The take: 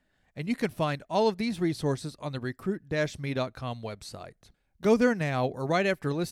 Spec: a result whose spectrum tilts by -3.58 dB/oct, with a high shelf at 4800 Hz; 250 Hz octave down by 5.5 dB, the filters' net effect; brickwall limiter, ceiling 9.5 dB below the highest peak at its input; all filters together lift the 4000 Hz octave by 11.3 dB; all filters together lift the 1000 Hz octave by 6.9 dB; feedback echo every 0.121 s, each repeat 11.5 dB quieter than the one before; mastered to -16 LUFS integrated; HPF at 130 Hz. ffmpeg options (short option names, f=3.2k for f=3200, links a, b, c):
-af "highpass=130,equalizer=f=250:t=o:g=-7,equalizer=f=1k:t=o:g=8.5,equalizer=f=4k:t=o:g=9,highshelf=f=4.8k:g=8,alimiter=limit=-17.5dB:level=0:latency=1,aecho=1:1:121|242|363:0.266|0.0718|0.0194,volume=14.5dB"